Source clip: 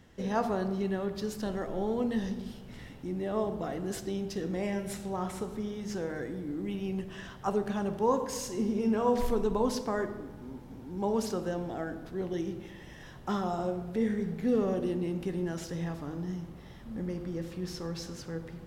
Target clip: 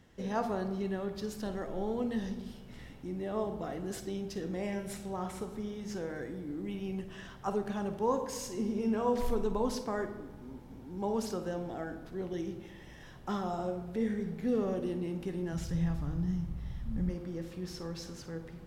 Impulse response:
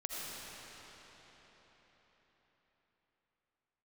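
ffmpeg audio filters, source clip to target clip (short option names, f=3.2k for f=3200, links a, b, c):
-filter_complex "[0:a]asplit=3[a][b][c];[a]afade=t=out:st=15.52:d=0.02[d];[b]asubboost=boost=7.5:cutoff=130,afade=t=in:st=15.52:d=0.02,afade=t=out:st=17.09:d=0.02[e];[c]afade=t=in:st=17.09:d=0.02[f];[d][e][f]amix=inputs=3:normalize=0[g];[1:a]atrim=start_sample=2205,atrim=end_sample=3087,asetrate=52920,aresample=44100[h];[g][h]afir=irnorm=-1:irlink=0,volume=2dB"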